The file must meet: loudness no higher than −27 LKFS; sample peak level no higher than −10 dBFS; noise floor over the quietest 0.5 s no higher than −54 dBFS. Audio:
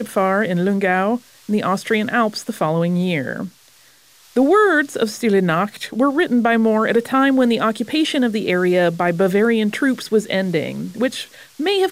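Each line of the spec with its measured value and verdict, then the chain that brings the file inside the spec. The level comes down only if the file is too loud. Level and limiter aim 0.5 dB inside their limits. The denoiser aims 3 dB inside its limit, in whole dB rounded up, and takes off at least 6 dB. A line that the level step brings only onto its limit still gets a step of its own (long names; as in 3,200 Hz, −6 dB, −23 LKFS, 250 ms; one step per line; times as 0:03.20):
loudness −18.0 LKFS: out of spec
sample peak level −6.0 dBFS: out of spec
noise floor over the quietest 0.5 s −51 dBFS: out of spec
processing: level −9.5 dB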